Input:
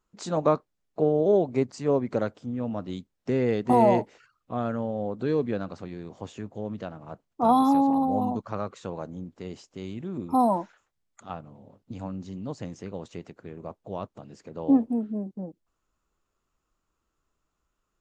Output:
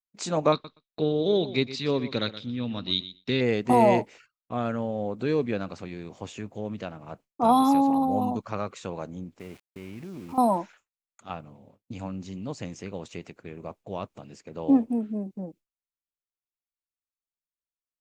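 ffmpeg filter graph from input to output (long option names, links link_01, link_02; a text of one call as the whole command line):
ffmpeg -i in.wav -filter_complex "[0:a]asettb=1/sr,asplit=3[link_01][link_02][link_03];[link_01]atrim=end=0.524[link_04];[link_02]atrim=start=0.52:end=3.41,asetpts=PTS-STARTPTS,afade=type=in:duration=0.004:curve=qsin,afade=type=out:start_time=2.886:duration=0.004:curve=qsin,lowpass=frequency=3800:width_type=q:width=14,equalizer=frequency=680:width_type=o:width=0.95:gain=-8.5,aecho=1:1:122|244:0.188|0.0283,atrim=end_sample=127449[link_05];[link_03]atrim=start=3.406[link_06];[link_04][link_05]acrossfade=duration=0.004:curve1=hsin:curve2=qsin[link_07];[link_07][link_06]acrossfade=duration=0.004:curve1=qsin:curve2=hsin,asettb=1/sr,asplit=3[link_08][link_09][link_10];[link_08]atrim=end=9.394[link_11];[link_09]atrim=start=9.39:end=10.38,asetpts=PTS-STARTPTS,afade=type=in:duration=0.004:curve=qsin,afade=type=out:start_time=0.986:duration=0.004:curve=qsin,lowpass=frequency=2500:width=0.5412,lowpass=frequency=2500:width=1.3066,acompressor=threshold=-36dB:ratio=4:attack=3.2:release=140:knee=1:detection=peak,aeval=exprs='val(0)*gte(abs(val(0)),0.00282)':channel_layout=same[link_12];[link_10]atrim=start=10.376[link_13];[link_11][link_12]acrossfade=duration=0.004:curve1=hsin:curve2=qsin[link_14];[link_14][link_13]acrossfade=duration=0.004:curve1=qsin:curve2=hsin,equalizer=frequency=2400:width=2.7:gain=7,agate=range=-33dB:threshold=-46dB:ratio=3:detection=peak,highshelf=frequency=3600:gain=7" out.wav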